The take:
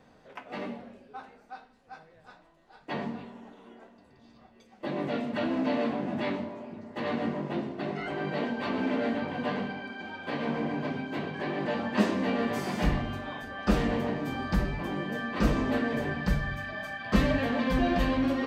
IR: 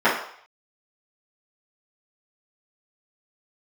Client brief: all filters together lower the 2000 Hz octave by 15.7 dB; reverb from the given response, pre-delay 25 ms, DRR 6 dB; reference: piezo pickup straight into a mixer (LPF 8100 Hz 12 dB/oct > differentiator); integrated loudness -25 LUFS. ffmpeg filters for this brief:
-filter_complex "[0:a]equalizer=f=2k:t=o:g=-5,asplit=2[a][b];[1:a]atrim=start_sample=2205,adelay=25[c];[b][c]afir=irnorm=-1:irlink=0,volume=-28dB[d];[a][d]amix=inputs=2:normalize=0,lowpass=8.1k,aderivative,volume=24.5dB"

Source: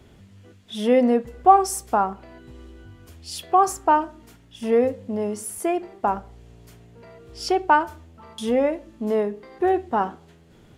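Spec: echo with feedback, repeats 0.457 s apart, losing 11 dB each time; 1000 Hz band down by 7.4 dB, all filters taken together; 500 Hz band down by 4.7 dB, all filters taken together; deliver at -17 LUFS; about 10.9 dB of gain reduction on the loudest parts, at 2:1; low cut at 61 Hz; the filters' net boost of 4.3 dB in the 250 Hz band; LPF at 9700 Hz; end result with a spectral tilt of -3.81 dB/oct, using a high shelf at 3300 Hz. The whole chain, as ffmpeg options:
-af "highpass=61,lowpass=9.7k,equalizer=f=250:t=o:g=7,equalizer=f=500:t=o:g=-6.5,equalizer=f=1k:t=o:g=-8.5,highshelf=f=3.3k:g=6.5,acompressor=threshold=-33dB:ratio=2,aecho=1:1:457|914|1371:0.282|0.0789|0.0221,volume=15.5dB"

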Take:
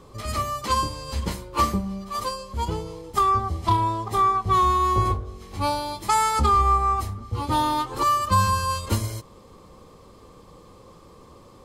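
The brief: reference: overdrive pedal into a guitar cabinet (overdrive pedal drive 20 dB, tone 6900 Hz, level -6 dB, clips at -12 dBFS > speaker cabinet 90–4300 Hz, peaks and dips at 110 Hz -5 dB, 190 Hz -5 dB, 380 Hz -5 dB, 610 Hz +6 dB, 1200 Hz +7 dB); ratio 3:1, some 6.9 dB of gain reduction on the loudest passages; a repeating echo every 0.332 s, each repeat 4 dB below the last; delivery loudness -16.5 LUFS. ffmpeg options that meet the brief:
-filter_complex "[0:a]acompressor=threshold=-25dB:ratio=3,aecho=1:1:332|664|996|1328|1660|1992|2324|2656|2988:0.631|0.398|0.25|0.158|0.0994|0.0626|0.0394|0.0249|0.0157,asplit=2[a][b];[b]highpass=f=720:p=1,volume=20dB,asoftclip=type=tanh:threshold=-12dB[c];[a][c]amix=inputs=2:normalize=0,lowpass=f=6.9k:p=1,volume=-6dB,highpass=90,equalizer=f=110:t=q:w=4:g=-5,equalizer=f=190:t=q:w=4:g=-5,equalizer=f=380:t=q:w=4:g=-5,equalizer=f=610:t=q:w=4:g=6,equalizer=f=1.2k:t=q:w=4:g=7,lowpass=f=4.3k:w=0.5412,lowpass=f=4.3k:w=1.3066,volume=-1.5dB"

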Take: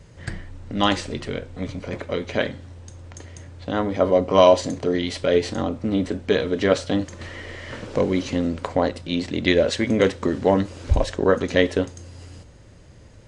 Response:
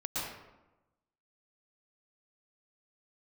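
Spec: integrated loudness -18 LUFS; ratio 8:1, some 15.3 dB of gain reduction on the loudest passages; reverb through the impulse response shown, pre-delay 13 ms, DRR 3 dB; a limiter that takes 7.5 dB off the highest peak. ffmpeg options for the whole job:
-filter_complex "[0:a]acompressor=threshold=-25dB:ratio=8,alimiter=limit=-19.5dB:level=0:latency=1,asplit=2[a][b];[1:a]atrim=start_sample=2205,adelay=13[c];[b][c]afir=irnorm=-1:irlink=0,volume=-8dB[d];[a][d]amix=inputs=2:normalize=0,volume=13.5dB"

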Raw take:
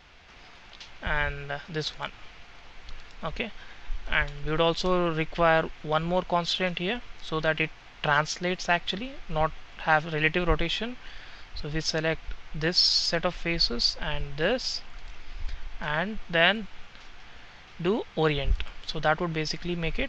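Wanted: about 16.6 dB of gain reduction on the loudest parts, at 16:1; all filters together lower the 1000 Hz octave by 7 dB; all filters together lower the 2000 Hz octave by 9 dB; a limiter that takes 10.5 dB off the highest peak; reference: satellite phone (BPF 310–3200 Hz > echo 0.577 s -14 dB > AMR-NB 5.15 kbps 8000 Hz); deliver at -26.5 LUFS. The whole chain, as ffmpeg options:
-af "equalizer=f=1k:t=o:g=-7.5,equalizer=f=2k:t=o:g=-8.5,acompressor=threshold=-36dB:ratio=16,alimiter=level_in=10dB:limit=-24dB:level=0:latency=1,volume=-10dB,highpass=310,lowpass=3.2k,aecho=1:1:577:0.2,volume=23.5dB" -ar 8000 -c:a libopencore_amrnb -b:a 5150

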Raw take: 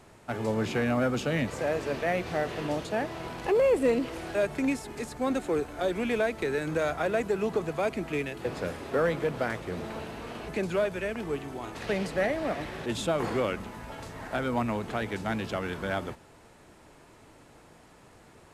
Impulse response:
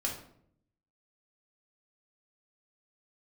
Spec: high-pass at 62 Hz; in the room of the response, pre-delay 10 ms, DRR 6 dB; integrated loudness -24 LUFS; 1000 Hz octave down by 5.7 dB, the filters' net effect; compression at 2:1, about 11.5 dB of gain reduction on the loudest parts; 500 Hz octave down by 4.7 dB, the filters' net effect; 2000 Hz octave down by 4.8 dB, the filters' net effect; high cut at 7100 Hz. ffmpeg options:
-filter_complex "[0:a]highpass=62,lowpass=7.1k,equalizer=f=500:t=o:g=-4,equalizer=f=1k:t=o:g=-5.5,equalizer=f=2k:t=o:g=-4,acompressor=threshold=-47dB:ratio=2,asplit=2[a][b];[1:a]atrim=start_sample=2205,adelay=10[c];[b][c]afir=irnorm=-1:irlink=0,volume=-9.5dB[d];[a][d]amix=inputs=2:normalize=0,volume=18dB"

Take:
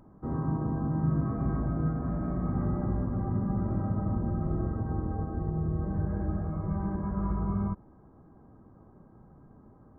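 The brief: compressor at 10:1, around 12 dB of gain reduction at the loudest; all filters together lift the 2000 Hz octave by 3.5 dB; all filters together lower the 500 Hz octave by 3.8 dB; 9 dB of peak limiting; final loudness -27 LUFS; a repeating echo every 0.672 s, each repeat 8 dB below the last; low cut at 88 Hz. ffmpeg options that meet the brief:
-af "highpass=88,equalizer=f=500:t=o:g=-6,equalizer=f=2k:t=o:g=5.5,acompressor=threshold=-37dB:ratio=10,alimiter=level_in=14.5dB:limit=-24dB:level=0:latency=1,volume=-14.5dB,aecho=1:1:672|1344|2016|2688|3360:0.398|0.159|0.0637|0.0255|0.0102,volume=19dB"

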